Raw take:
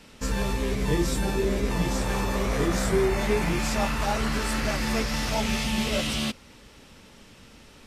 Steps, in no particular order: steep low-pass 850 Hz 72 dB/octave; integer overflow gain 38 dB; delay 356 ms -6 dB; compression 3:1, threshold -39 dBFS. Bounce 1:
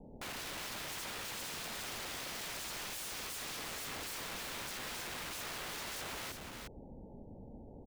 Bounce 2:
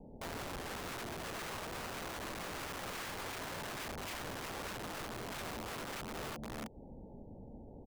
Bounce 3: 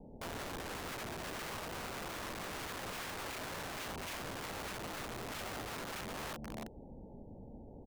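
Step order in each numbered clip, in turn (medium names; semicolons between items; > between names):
steep low-pass > integer overflow > delay > compression; delay > compression > steep low-pass > integer overflow; steep low-pass > compression > delay > integer overflow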